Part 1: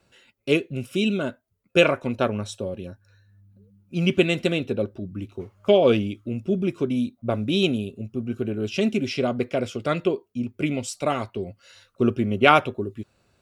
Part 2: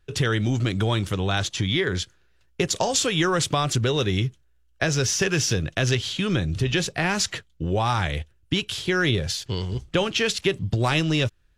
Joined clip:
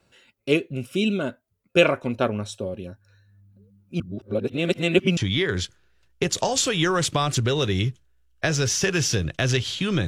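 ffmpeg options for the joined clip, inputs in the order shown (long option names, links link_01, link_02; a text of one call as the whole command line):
ffmpeg -i cue0.wav -i cue1.wav -filter_complex "[0:a]apad=whole_dur=10.07,atrim=end=10.07,asplit=2[link_01][link_02];[link_01]atrim=end=4.002[link_03];[link_02]atrim=start=3.998:end=5.172,asetpts=PTS-STARTPTS,areverse[link_04];[1:a]atrim=start=1.548:end=6.45[link_05];[link_03][link_04]acrossfade=duration=0.004:curve1=hsin:curve2=hsin[link_06];[link_06][link_05]acrossfade=duration=0.004:curve1=hsin:curve2=hsin" out.wav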